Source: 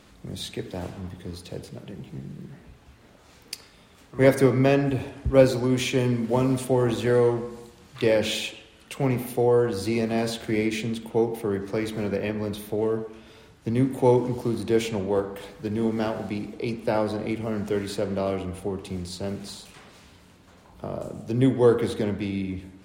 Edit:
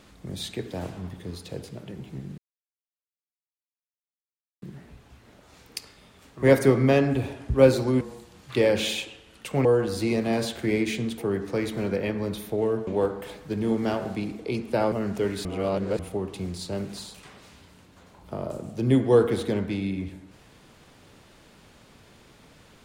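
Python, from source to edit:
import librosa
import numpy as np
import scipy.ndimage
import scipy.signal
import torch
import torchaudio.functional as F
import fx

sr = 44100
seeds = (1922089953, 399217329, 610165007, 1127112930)

y = fx.edit(x, sr, fx.insert_silence(at_s=2.38, length_s=2.24),
    fx.cut(start_s=5.77, length_s=1.7),
    fx.cut(start_s=9.11, length_s=0.39),
    fx.cut(start_s=11.03, length_s=0.35),
    fx.cut(start_s=13.07, length_s=1.94),
    fx.cut(start_s=17.06, length_s=0.37),
    fx.reverse_span(start_s=17.96, length_s=0.54), tone=tone)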